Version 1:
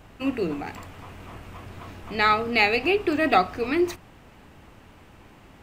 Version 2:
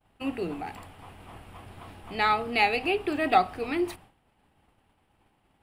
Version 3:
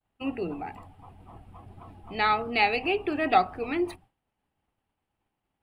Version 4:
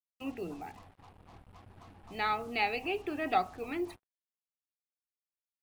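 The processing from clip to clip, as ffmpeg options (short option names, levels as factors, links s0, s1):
-af "equalizer=f=800:t=o:w=0.33:g=7,equalizer=f=3150:t=o:w=0.33:g=4,equalizer=f=6300:t=o:w=0.33:g=-8,equalizer=f=10000:t=o:w=0.33:g=10,agate=range=0.0224:threshold=0.0112:ratio=3:detection=peak,volume=0.531"
-af "afftdn=nr=14:nf=-44"
-af "acrusher=bits=7:mix=0:aa=0.5,volume=0.422"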